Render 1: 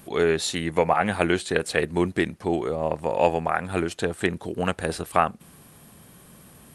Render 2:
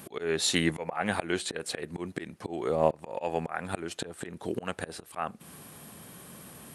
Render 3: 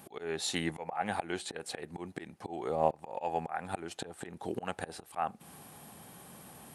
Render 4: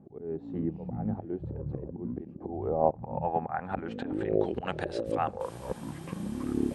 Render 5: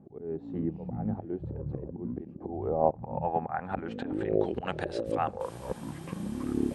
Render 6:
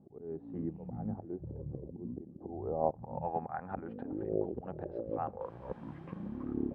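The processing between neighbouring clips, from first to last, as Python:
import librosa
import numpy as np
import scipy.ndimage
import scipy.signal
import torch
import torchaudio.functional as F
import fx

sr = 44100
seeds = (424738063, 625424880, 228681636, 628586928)

y1 = fx.auto_swell(x, sr, attack_ms=370.0)
y1 = fx.highpass(y1, sr, hz=150.0, slope=6)
y1 = F.gain(torch.from_numpy(y1), 3.0).numpy()
y2 = fx.peak_eq(y1, sr, hz=800.0, db=9.5, octaves=0.34)
y2 = fx.rider(y2, sr, range_db=3, speed_s=2.0)
y2 = F.gain(torch.from_numpy(y2), -7.0).numpy()
y3 = fx.filter_sweep_lowpass(y2, sr, from_hz=350.0, to_hz=7000.0, start_s=2.0, end_s=5.38, q=0.97)
y3 = fx.echo_pitch(y3, sr, ms=100, semitones=-7, count=2, db_per_echo=-3.0)
y3 = F.gain(torch.from_numpy(y3), 3.0).numpy()
y4 = y3
y5 = fx.filter_lfo_lowpass(y4, sr, shape='sine', hz=0.38, low_hz=630.0, high_hz=1900.0, q=0.75)
y5 = F.gain(torch.from_numpy(y5), -6.0).numpy()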